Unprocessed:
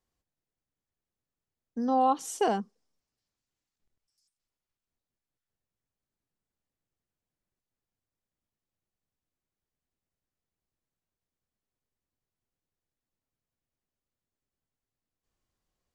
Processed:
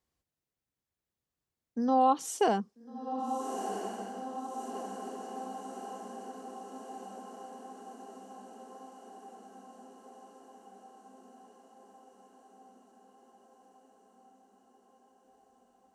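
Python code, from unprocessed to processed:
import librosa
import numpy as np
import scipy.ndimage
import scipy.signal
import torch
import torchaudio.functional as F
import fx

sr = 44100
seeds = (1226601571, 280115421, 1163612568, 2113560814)

y = scipy.signal.sosfilt(scipy.signal.butter(2, 42.0, 'highpass', fs=sr, output='sos'), x)
y = fx.echo_diffused(y, sr, ms=1346, feedback_pct=68, wet_db=-8.0)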